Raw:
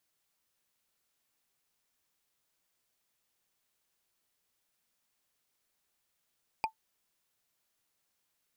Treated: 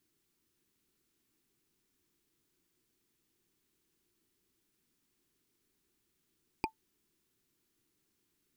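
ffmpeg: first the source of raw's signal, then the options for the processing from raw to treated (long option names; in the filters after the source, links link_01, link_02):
-f lavfi -i "aevalsrc='0.0794*pow(10,-3*t/0.1)*sin(2*PI*883*t)+0.0447*pow(10,-3*t/0.03)*sin(2*PI*2434.4*t)+0.0251*pow(10,-3*t/0.013)*sin(2*PI*4771.7*t)+0.0141*pow(10,-3*t/0.007)*sin(2*PI*7887.8*t)+0.00794*pow(10,-3*t/0.004)*sin(2*PI*11779.2*t)':duration=0.45:sample_rate=44100"
-af "lowshelf=frequency=460:width_type=q:width=3:gain=9"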